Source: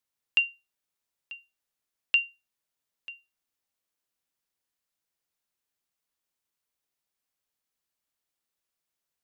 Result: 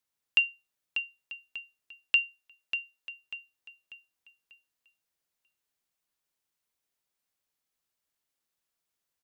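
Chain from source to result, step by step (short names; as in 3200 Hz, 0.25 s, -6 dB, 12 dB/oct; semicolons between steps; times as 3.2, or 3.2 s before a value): 2.27–3.09 bell 99 Hz -12 dB 1.7 oct; feedback echo 0.592 s, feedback 37%, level -8.5 dB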